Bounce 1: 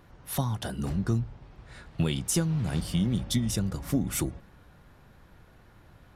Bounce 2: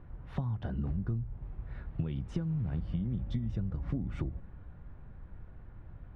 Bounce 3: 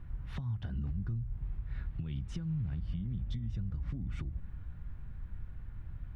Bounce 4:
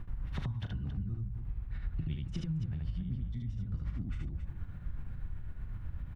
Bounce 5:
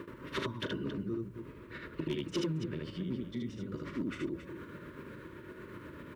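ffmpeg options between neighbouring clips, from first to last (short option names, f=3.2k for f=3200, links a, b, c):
-af "lowpass=2.3k,aemphasis=mode=reproduction:type=bsi,acompressor=threshold=-26dB:ratio=6,volume=-4.5dB"
-af "equalizer=f=530:t=o:w=2.7:g=-14,alimiter=level_in=11dB:limit=-24dB:level=0:latency=1:release=243,volume=-11dB,volume=6.5dB"
-af "acompressor=threshold=-39dB:ratio=6,tremolo=f=8:d=0.99,aecho=1:1:37.9|75.8|274.1:0.282|0.794|0.316,volume=7.5dB"
-af "highpass=f=360:t=q:w=3.6,asoftclip=type=hard:threshold=-39dB,asuperstop=centerf=760:order=20:qfactor=3,volume=11dB"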